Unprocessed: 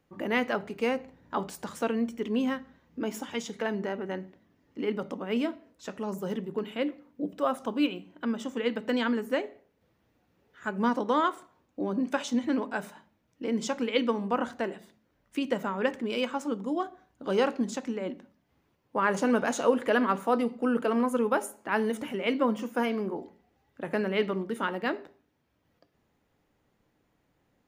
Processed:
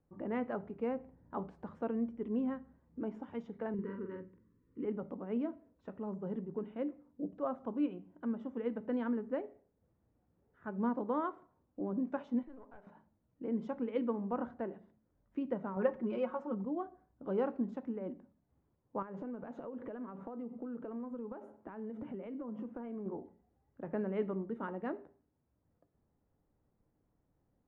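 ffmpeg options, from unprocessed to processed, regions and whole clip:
-filter_complex "[0:a]asettb=1/sr,asplit=3[a][b][c];[a]atrim=end=3.744[d];[b]atrim=start=3.74:end=4.85,asetpts=PTS-STARTPTS,afade=t=in:d=0.004:c=qsin,afade=t=out:st=1.106:d=0.004:c=qsin,asuperstop=centerf=710:order=12:qfactor=1.8,asplit=2[e][f];[f]adelay=45,volume=-4dB[g];[e][g]amix=inputs=2:normalize=0,atrim=end_sample=48951[h];[c]atrim=start=4.846[i];[d][h]acrossfade=d=0.004:c1=hsin:c2=qsin[j];[j][i]acrossfade=d=0.004:c1=qsin:c2=hsin,asettb=1/sr,asplit=3[k][l][m];[k]atrim=end=12.434[n];[l]atrim=start=12.43:end=12.87,asetpts=PTS-STARTPTS,afade=t=in:d=0.004:c=qsin,afade=t=out:st=0.436:d=0.004:c=qsin,highpass=390,aeval=exprs='(tanh(17.8*val(0)+0.7)-tanh(0.7))/17.8':c=same,acompressor=threshold=-42dB:ratio=4:attack=3.2:release=140:knee=1:detection=peak[o];[m]atrim=start=12.866[p];[n][o]acrossfade=d=0.004:c1=hsin:c2=qsin[q];[q][p]acrossfade=d=0.004:c1=qsin:c2=hsin,asettb=1/sr,asplit=3[r][s][t];[r]atrim=end=15.764[u];[s]atrim=start=15.76:end=16.65,asetpts=PTS-STARTPTS,afade=t=in:d=0.004:c=qsin,afade=t=out:st=0.886:d=0.004:c=qsin,equalizer=f=940:w=0.93:g=3.5,aecho=1:1:5.5:0.84,atrim=end_sample=39249[v];[t]atrim=start=16.646[w];[u][v]acrossfade=d=0.004:c1=hsin:c2=qsin[x];[x][w]acrossfade=d=0.004:c1=qsin:c2=hsin,asettb=1/sr,asplit=3[y][z][aa];[y]atrim=end=19.024[ab];[z]atrim=start=19.02:end=23.06,asetpts=PTS-STARTPTS,afade=t=in:d=0.004:c=qsin,afade=t=out:st=4.036:d=0.004:c=qsin,highpass=40,acompressor=threshold=-34dB:ratio=16:attack=3.2:release=140:knee=1:detection=peak,equalizer=f=170:w=0.32:g=3.5[ac];[aa]atrim=start=23.056[ad];[ab][ac]acrossfade=d=0.004:c1=hsin:c2=qsin[ae];[ae][ad]acrossfade=d=0.004:c1=qsin:c2=hsin,lowpass=1.1k,lowshelf=f=140:g=9.5,volume=-8.5dB"

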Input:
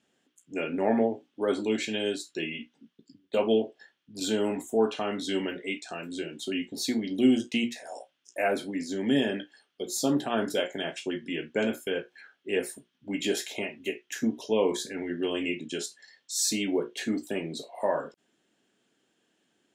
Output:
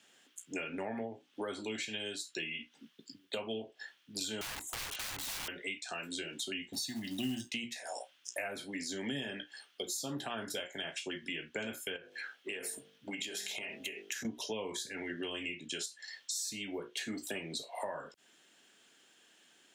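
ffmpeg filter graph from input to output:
-filter_complex "[0:a]asettb=1/sr,asplit=3[a][b][c];[a]atrim=end=4.414[d];[b]atrim=start=4.41:end=5.48,asetpts=PTS-STARTPTS,afade=t=in:d=0.004:c=qsin,afade=t=out:st=1.066:d=0.004:c=qsin,equalizer=f=180:t=o:w=0.3:g=-13.5,bandreject=f=450:w=6.3,aeval=exprs='(mod(37.6*val(0)+1,2)-1)/37.6':c=same[e];[c]atrim=start=5.476[f];[d][e]acrossfade=d=0.004:c1=hsin:c2=qsin[g];[g][f]acrossfade=d=0.004:c1=qsin:c2=hsin,asettb=1/sr,asplit=3[h][i][j];[h]atrim=end=6.734[k];[i]atrim=start=6.73:end=7.5,asetpts=PTS-STARTPTS,afade=t=in:d=0.004:c=qsin,afade=t=out:st=0.766:d=0.004:c=qsin,bandreject=f=2.2k:w=10,aecho=1:1:1.1:0.84,atrim=end_sample=33957,acrusher=bits=7:mode=log:mix=0:aa=0.000001[l];[j]atrim=start=7.496[m];[k][l]acrossfade=d=0.004:c1=hsin:c2=qsin[n];[n][m]acrossfade=d=0.004:c1=qsin:c2=hsin,asettb=1/sr,asplit=3[o][p][q];[o]atrim=end=11.964[r];[p]atrim=start=11.96:end=14.25,asetpts=PTS-STARTPTS,afade=t=in:d=0.004:c=qsin,afade=t=out:st=2.286:d=0.004:c=qsin,bandreject=f=49.91:t=h:w=4,bandreject=f=99.82:t=h:w=4,bandreject=f=149.73:t=h:w=4,bandreject=f=199.64:t=h:w=4,bandreject=f=249.55:t=h:w=4,bandreject=f=299.46:t=h:w=4,bandreject=f=349.37:t=h:w=4,bandreject=f=399.28:t=h:w=4,bandreject=f=449.19:t=h:w=4,bandreject=f=499.1:t=h:w=4,bandreject=f=549.01:t=h:w=4,bandreject=f=598.92:t=h:w=4,bandreject=f=648.83:t=h:w=4,bandreject=f=698.74:t=h:w=4,bandreject=f=748.65:t=h:w=4,bandreject=f=798.56:t=h:w=4,acompressor=threshold=-37dB:ratio=6:attack=3.2:release=140:knee=1:detection=peak[s];[q]atrim=start=14.246[t];[r][s]acrossfade=d=0.004:c1=hsin:c2=qsin[u];[u][t]acrossfade=d=0.004:c1=qsin:c2=hsin,tiltshelf=f=670:g=-7.5,acrossover=split=130[v][w];[w]acompressor=threshold=-41dB:ratio=10[x];[v][x]amix=inputs=2:normalize=0,volume=4dB"

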